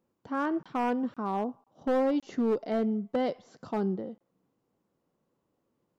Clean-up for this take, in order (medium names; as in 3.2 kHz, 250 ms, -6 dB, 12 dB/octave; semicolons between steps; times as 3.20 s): clip repair -22 dBFS; interpolate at 0.63/1.14/1.64/2.20/4.18 s, 26 ms